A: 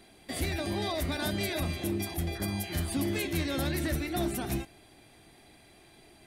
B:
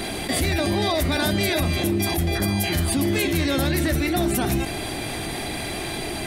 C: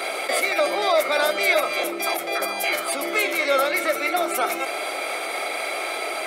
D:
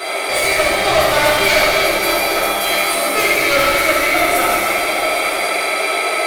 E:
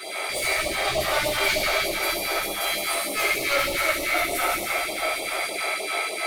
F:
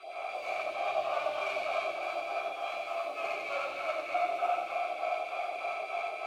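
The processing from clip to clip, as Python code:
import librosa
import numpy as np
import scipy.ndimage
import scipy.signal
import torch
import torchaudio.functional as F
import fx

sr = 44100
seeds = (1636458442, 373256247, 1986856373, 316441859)

y1 = fx.env_flatten(x, sr, amount_pct=70)
y1 = y1 * 10.0 ** (7.0 / 20.0)
y2 = fx.ladder_highpass(y1, sr, hz=470.0, resonance_pct=55)
y2 = fx.small_body(y2, sr, hz=(1300.0, 2200.0), ring_ms=35, db=18)
y2 = y2 * 10.0 ** (8.5 / 20.0)
y3 = np.minimum(y2, 2.0 * 10.0 ** (-18.0 / 20.0) - y2)
y3 = y3 + 10.0 ** (-10.5 / 20.0) * np.pad(y3, (int(808 * sr / 1000.0), 0))[:len(y3)]
y3 = fx.rev_fdn(y3, sr, rt60_s=2.8, lf_ratio=1.0, hf_ratio=0.95, size_ms=46.0, drr_db=-8.5)
y4 = fx.phaser_stages(y3, sr, stages=2, low_hz=140.0, high_hz=1600.0, hz=3.3, feedback_pct=5)
y4 = y4 * 10.0 ** (-7.5 / 20.0)
y5 = fx.tracing_dist(y4, sr, depth_ms=0.13)
y5 = fx.vowel_filter(y5, sr, vowel='a')
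y5 = y5 + 10.0 ** (-3.5 / 20.0) * np.pad(y5, (int(92 * sr / 1000.0), 0))[:len(y5)]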